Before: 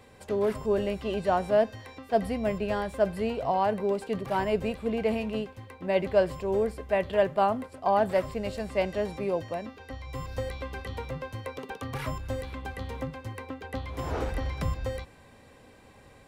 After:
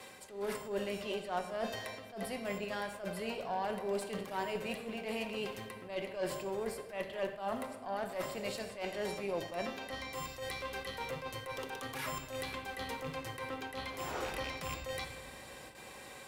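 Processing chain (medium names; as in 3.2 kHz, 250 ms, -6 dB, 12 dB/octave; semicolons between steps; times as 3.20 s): rattle on loud lows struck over -28 dBFS, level -32 dBFS; RIAA curve recording; gate with hold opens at -44 dBFS; reverse; compression 5:1, threshold -41 dBFS, peak gain reduction 19.5 dB; reverse; treble shelf 6.6 kHz -8.5 dB; simulated room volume 1500 m³, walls mixed, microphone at 1 m; Chebyshev shaper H 6 -25 dB, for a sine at -27 dBFS; attacks held to a fixed rise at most 130 dB/s; trim +4.5 dB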